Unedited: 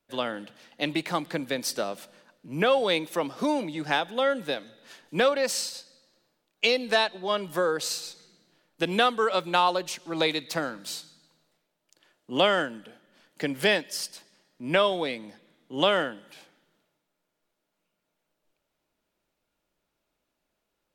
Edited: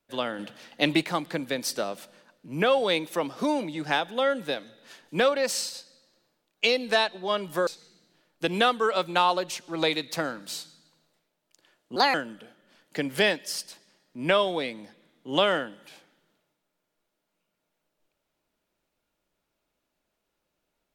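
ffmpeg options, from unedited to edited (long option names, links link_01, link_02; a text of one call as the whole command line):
ffmpeg -i in.wav -filter_complex "[0:a]asplit=6[link_01][link_02][link_03][link_04][link_05][link_06];[link_01]atrim=end=0.392[link_07];[link_02]atrim=start=0.388:end=1.042,asetpts=PTS-STARTPTS,volume=5dB[link_08];[link_03]atrim=start=1.038:end=7.672[link_09];[link_04]atrim=start=8.048:end=12.344[link_10];[link_05]atrim=start=12.34:end=12.59,asetpts=PTS-STARTPTS,asetrate=60858,aresample=44100,atrim=end_sample=7989,asetpts=PTS-STARTPTS[link_11];[link_06]atrim=start=12.586[link_12];[link_07][link_08]acrossfade=duration=0.004:curve1=hsin:curve2=hsin[link_13];[link_13][link_09]acrossfade=duration=0.004:curve1=hsin:curve2=hsin[link_14];[link_14][link_10]acrossfade=duration=0.004:curve1=hsin:curve2=hsin[link_15];[link_15][link_11]acrossfade=duration=0.004:curve1=hsin:curve2=hsin[link_16];[link_16][link_12]acrossfade=duration=0.004:curve1=hsin:curve2=hsin" out.wav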